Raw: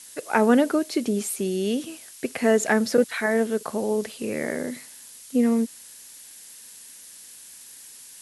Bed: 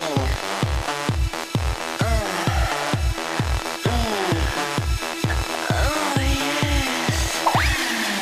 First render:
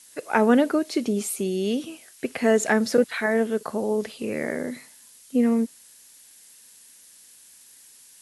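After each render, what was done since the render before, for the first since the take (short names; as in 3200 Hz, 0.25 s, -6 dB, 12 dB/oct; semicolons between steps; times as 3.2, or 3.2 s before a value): noise print and reduce 6 dB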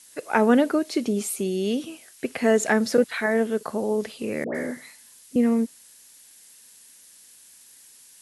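4.44–5.36 dispersion highs, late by 0.107 s, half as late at 1100 Hz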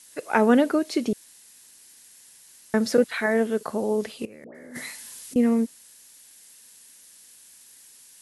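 1.13–2.74 room tone; 4.25–5.36 negative-ratio compressor -41 dBFS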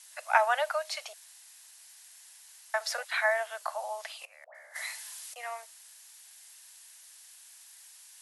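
steep high-pass 630 Hz 72 dB/oct; high shelf 7900 Hz -4.5 dB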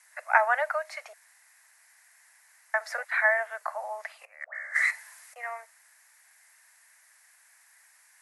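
4.41–4.91 spectral gain 1100–9500 Hz +10 dB; resonant high shelf 2500 Hz -8 dB, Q 3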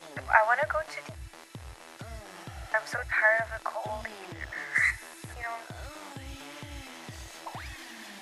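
add bed -22 dB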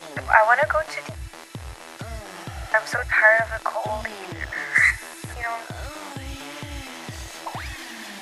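gain +8 dB; limiter -2 dBFS, peak gain reduction 3 dB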